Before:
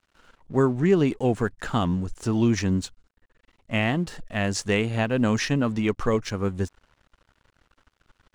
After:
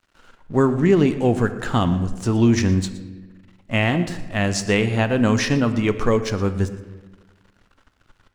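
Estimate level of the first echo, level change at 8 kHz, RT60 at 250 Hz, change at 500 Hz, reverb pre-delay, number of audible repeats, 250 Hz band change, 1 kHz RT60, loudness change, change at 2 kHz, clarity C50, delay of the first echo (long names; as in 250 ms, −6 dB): −17.0 dB, +4.5 dB, 1.6 s, +4.5 dB, 4 ms, 1, +4.5 dB, 1.1 s, +4.5 dB, +4.5 dB, 11.5 dB, 118 ms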